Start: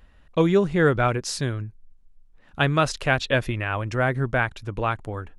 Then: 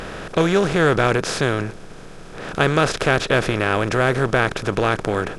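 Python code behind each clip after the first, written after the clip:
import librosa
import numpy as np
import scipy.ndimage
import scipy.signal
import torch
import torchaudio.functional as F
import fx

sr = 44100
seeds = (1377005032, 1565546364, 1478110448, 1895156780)

y = fx.bin_compress(x, sr, power=0.4)
y = F.gain(torch.from_numpy(y), -1.0).numpy()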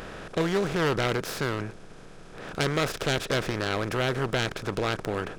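y = fx.self_delay(x, sr, depth_ms=0.28)
y = F.gain(torch.from_numpy(y), -8.0).numpy()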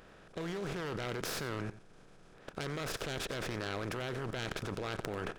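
y = fx.level_steps(x, sr, step_db=19)
y = y + 10.0 ** (-15.5 / 20.0) * np.pad(y, (int(90 * sr / 1000.0), 0))[:len(y)]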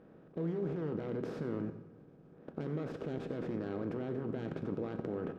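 y = fx.bandpass_q(x, sr, hz=260.0, q=1.3)
y = fx.rev_fdn(y, sr, rt60_s=1.2, lf_ratio=1.3, hf_ratio=0.85, size_ms=37.0, drr_db=8.0)
y = F.gain(torch.from_numpy(y), 5.5).numpy()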